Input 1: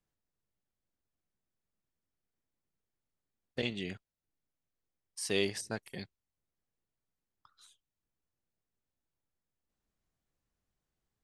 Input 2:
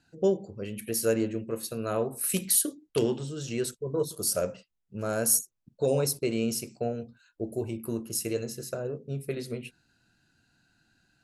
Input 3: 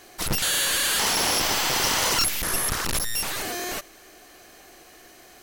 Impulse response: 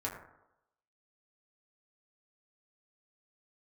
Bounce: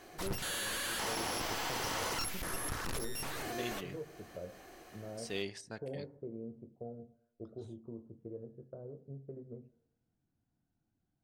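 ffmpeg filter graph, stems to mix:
-filter_complex "[0:a]lowpass=8100,volume=-8dB,asplit=2[link_01][link_02];[link_02]volume=-20dB[link_03];[1:a]lowpass=frequency=1000:width=0.5412,lowpass=frequency=1000:width=1.3066,lowshelf=frequency=430:gain=4.5,volume=-15.5dB,asplit=2[link_04][link_05];[link_05]volume=-16.5dB[link_06];[2:a]volume=-3.5dB,asplit=2[link_07][link_08];[link_08]volume=-18.5dB[link_09];[link_04][link_07]amix=inputs=2:normalize=0,highshelf=frequency=2600:gain=-11,acompressor=threshold=-44dB:ratio=2,volume=0dB[link_10];[3:a]atrim=start_sample=2205[link_11];[link_03][link_06][link_09]amix=inputs=3:normalize=0[link_12];[link_12][link_11]afir=irnorm=-1:irlink=0[link_13];[link_01][link_10][link_13]amix=inputs=3:normalize=0"

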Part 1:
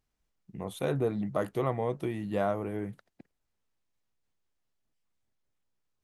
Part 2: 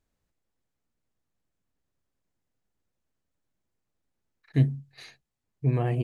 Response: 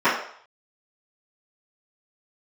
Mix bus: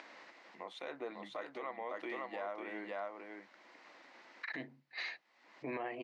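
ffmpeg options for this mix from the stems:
-filter_complex "[0:a]highshelf=frequency=3900:gain=10.5,volume=-4dB,asplit=3[link_01][link_02][link_03];[link_02]volume=-4.5dB[link_04];[1:a]acompressor=mode=upward:threshold=-24dB:ratio=2.5,volume=0.5dB[link_05];[link_03]apad=whole_len=266141[link_06];[link_05][link_06]sidechaincompress=threshold=-51dB:ratio=8:attack=46:release=785[link_07];[link_04]aecho=0:1:549:1[link_08];[link_01][link_07][link_08]amix=inputs=3:normalize=0,highpass=frequency=340:width=0.5412,highpass=frequency=340:width=1.3066,equalizer=frequency=420:width_type=q:width=4:gain=-10,equalizer=frequency=1000:width_type=q:width=4:gain=4,equalizer=frequency=2000:width_type=q:width=4:gain=8,equalizer=frequency=3400:width_type=q:width=4:gain=-4,lowpass=frequency=4500:width=0.5412,lowpass=frequency=4500:width=1.3066,alimiter=level_in=7.5dB:limit=-24dB:level=0:latency=1:release=198,volume=-7.5dB"

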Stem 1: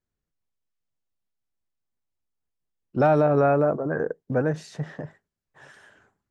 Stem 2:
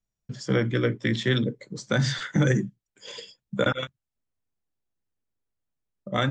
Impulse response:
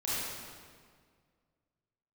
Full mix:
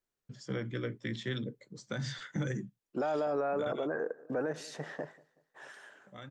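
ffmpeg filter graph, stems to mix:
-filter_complex "[0:a]highpass=330,alimiter=limit=-21dB:level=0:latency=1:release=13,volume=-0.5dB,asplit=2[link_01][link_02];[link_02]volume=-24dB[link_03];[1:a]volume=-12dB,afade=type=out:start_time=3.73:duration=0.24:silence=0.266073[link_04];[link_03]aecho=0:1:189|378|567|756|945|1134:1|0.4|0.16|0.064|0.0256|0.0102[link_05];[link_01][link_04][link_05]amix=inputs=3:normalize=0,alimiter=level_in=1dB:limit=-24dB:level=0:latency=1:release=111,volume=-1dB"

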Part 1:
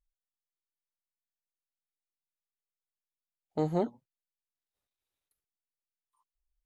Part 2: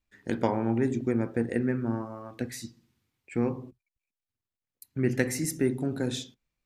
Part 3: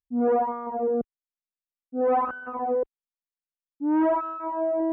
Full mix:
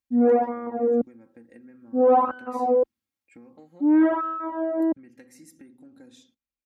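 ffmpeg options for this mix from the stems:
ffmpeg -i stem1.wav -i stem2.wav -i stem3.wav -filter_complex "[0:a]volume=-12.5dB[link_01];[1:a]volume=-15dB[link_02];[2:a]volume=1.5dB[link_03];[link_01][link_02]amix=inputs=2:normalize=0,acompressor=threshold=-48dB:ratio=6,volume=0dB[link_04];[link_03][link_04]amix=inputs=2:normalize=0,highpass=78,aecho=1:1:3.7:0.73" out.wav

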